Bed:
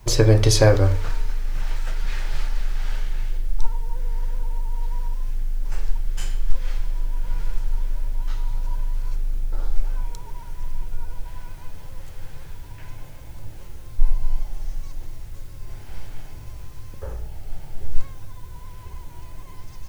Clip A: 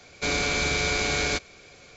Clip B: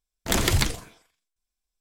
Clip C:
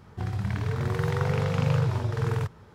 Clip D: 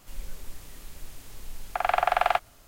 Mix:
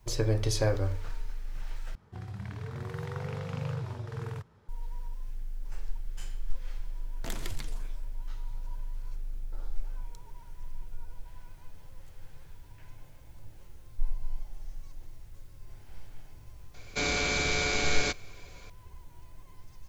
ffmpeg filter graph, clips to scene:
ffmpeg -i bed.wav -i cue0.wav -i cue1.wav -i cue2.wav -filter_complex "[0:a]volume=-12.5dB[link_01];[2:a]acompressor=threshold=-41dB:ratio=3:attack=58:release=238:knee=1:detection=peak[link_02];[link_01]asplit=2[link_03][link_04];[link_03]atrim=end=1.954[link_05];[3:a]atrim=end=2.74,asetpts=PTS-STARTPTS,volume=-10.5dB[link_06];[link_04]atrim=start=4.686[link_07];[link_02]atrim=end=1.8,asetpts=PTS-STARTPTS,volume=-5.5dB,afade=type=in:duration=0.004:curve=hsin,afade=type=out:start_time=1.796:duration=0.004:curve=hsin,adelay=307818S[link_08];[1:a]atrim=end=1.96,asetpts=PTS-STARTPTS,volume=-3.5dB,afade=type=in:duration=0.004:curve=hsin,afade=type=out:start_time=1.956:duration=0.004:curve=hsin,adelay=16740[link_09];[link_05][link_06]acrossfade=duration=0.004:curve1=hsin:curve2=hsin[link_10];[link_10][link_07]acrossfade=duration=0.004:curve1=hsin:curve2=hsin[link_11];[link_11][link_08][link_09]amix=inputs=3:normalize=0" out.wav

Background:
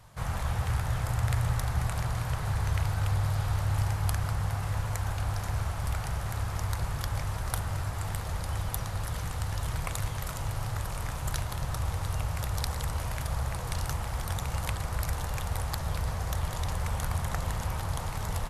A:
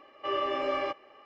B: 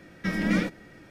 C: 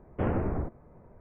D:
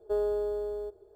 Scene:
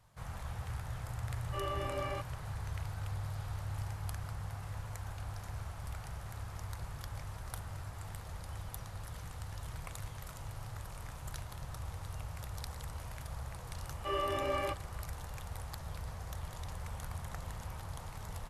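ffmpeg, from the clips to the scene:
ffmpeg -i bed.wav -i cue0.wav -filter_complex "[1:a]asplit=2[link_01][link_02];[0:a]volume=-11.5dB[link_03];[link_01]atrim=end=1.25,asetpts=PTS-STARTPTS,volume=-8.5dB,afade=type=in:duration=0.004:curve=hsin,afade=type=out:start_time=1.246:duration=0.004:curve=hsin,adelay=1290[link_04];[link_02]atrim=end=1.25,asetpts=PTS-STARTPTS,volume=-4.5dB,afade=type=in:duration=0.004:curve=hsin,afade=type=out:start_time=1.246:duration=0.004:curve=hsin,adelay=13810[link_05];[link_03][link_04][link_05]amix=inputs=3:normalize=0" out.wav

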